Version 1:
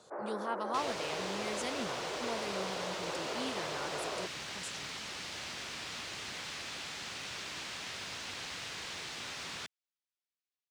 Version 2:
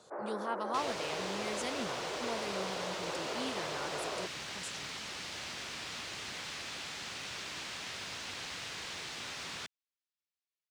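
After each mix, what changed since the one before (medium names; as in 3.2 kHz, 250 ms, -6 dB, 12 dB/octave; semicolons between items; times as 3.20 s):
no change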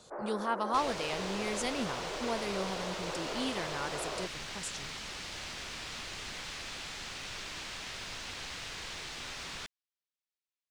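speech +5.0 dB; master: remove high-pass 98 Hz 12 dB/octave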